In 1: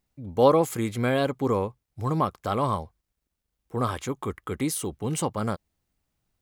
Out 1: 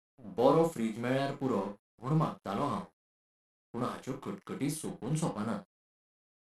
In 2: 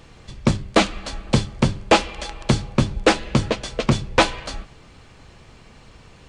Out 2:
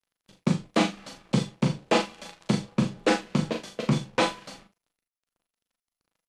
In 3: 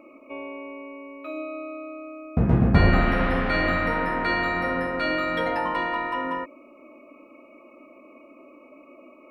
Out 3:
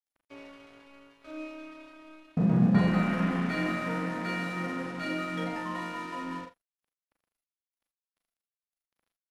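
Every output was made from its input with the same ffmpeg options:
-filter_complex "[0:a]lowshelf=f=110:t=q:w=3:g=-13.5,flanger=delay=9.6:depth=6.2:regen=-45:speed=0.35:shape=sinusoidal,aeval=exprs='sgn(val(0))*max(abs(val(0))-0.00794,0)':c=same,asplit=2[s0][s1];[s1]adelay=39,volume=0.447[s2];[s0][s2]amix=inputs=2:normalize=0,aecho=1:1:35|45:0.282|0.266,volume=0.562" -ar 44100 -c:a mp2 -b:a 128k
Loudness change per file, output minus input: -6.5 LU, -6.0 LU, -5.5 LU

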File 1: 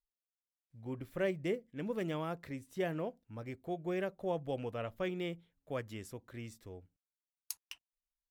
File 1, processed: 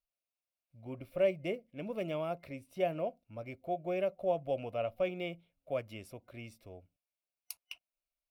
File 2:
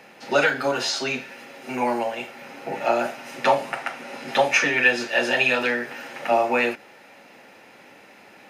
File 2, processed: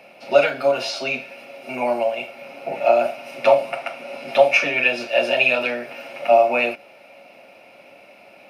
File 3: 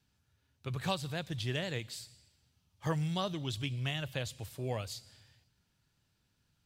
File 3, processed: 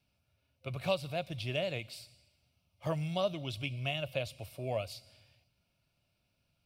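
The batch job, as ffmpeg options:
-af "superequalizer=8b=3.16:11b=0.501:12b=2:15b=0.447,volume=0.75"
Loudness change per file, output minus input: +3.0 LU, +3.0 LU, +0.5 LU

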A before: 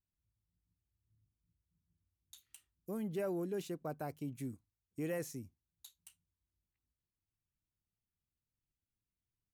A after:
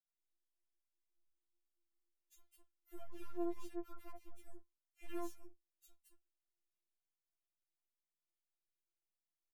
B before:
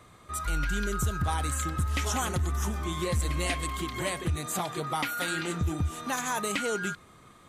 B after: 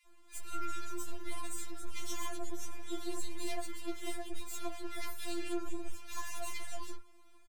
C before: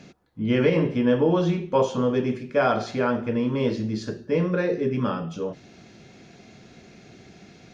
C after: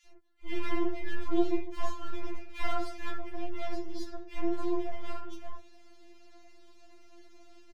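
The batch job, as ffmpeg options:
-filter_complex "[0:a]aeval=exprs='max(val(0),0)':c=same,acrossover=split=1700[s0][s1];[s0]adelay=60[s2];[s2][s1]amix=inputs=2:normalize=0,afftfilt=real='re*4*eq(mod(b,16),0)':imag='im*4*eq(mod(b,16),0)':win_size=2048:overlap=0.75,volume=0.631"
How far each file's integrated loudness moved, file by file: -6.5 LU, -13.0 LU, -12.5 LU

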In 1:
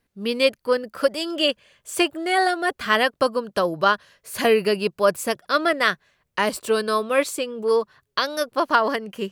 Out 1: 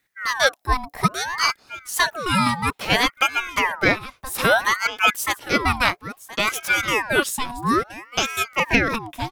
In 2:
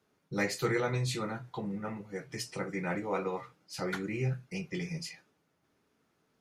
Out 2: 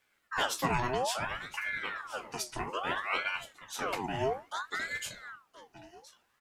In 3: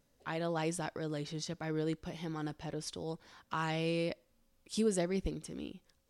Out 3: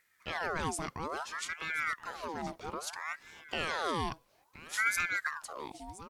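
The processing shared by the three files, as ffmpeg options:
-af "highshelf=f=8600:g=7.5,aecho=1:1:1022:0.158,aeval=exprs='val(0)*sin(2*PI*1200*n/s+1200*0.6/0.6*sin(2*PI*0.6*n/s))':c=same,volume=1.41"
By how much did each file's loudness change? +1.0 LU, +1.0 LU, +2.0 LU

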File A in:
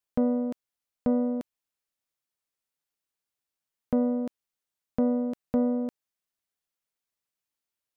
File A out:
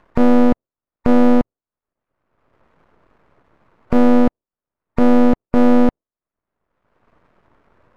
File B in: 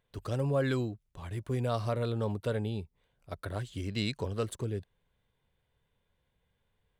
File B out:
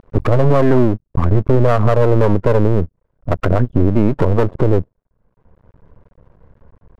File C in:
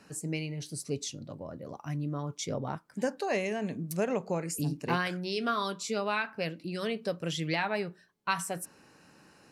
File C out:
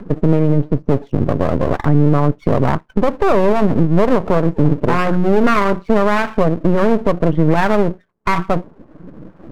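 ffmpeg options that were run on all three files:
-af "afftdn=nr=24:nf=-46,lowpass=f=1200:w=0.5412,lowpass=f=1200:w=1.3066,acompressor=threshold=0.00562:ratio=2.5,lowshelf=f=79:g=5,acompressor=mode=upward:threshold=0.00112:ratio=2.5,aeval=exprs='max(val(0),0)':c=same,equalizer=f=800:t=o:w=0.22:g=-4.5,alimiter=level_in=56.2:limit=0.891:release=50:level=0:latency=1,volume=0.891"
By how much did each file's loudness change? +13.0 LU, +18.0 LU, +17.5 LU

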